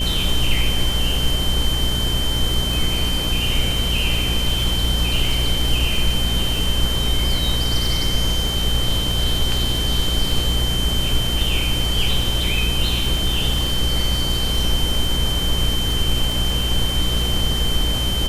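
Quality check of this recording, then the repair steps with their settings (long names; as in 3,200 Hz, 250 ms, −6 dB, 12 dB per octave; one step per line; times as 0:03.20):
mains buzz 60 Hz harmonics 10 −24 dBFS
surface crackle 33 per second −24 dBFS
whistle 3,100 Hz −23 dBFS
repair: click removal
hum removal 60 Hz, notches 10
notch filter 3,100 Hz, Q 30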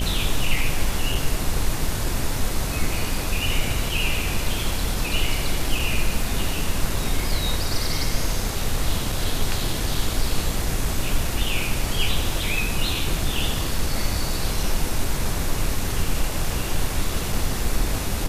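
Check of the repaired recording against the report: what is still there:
none of them is left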